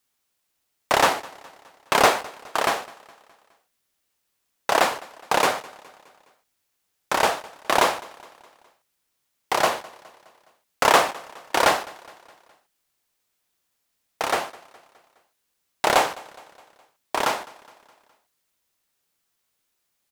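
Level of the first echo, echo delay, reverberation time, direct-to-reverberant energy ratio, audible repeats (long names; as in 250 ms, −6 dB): −22.0 dB, 208 ms, no reverb audible, no reverb audible, 3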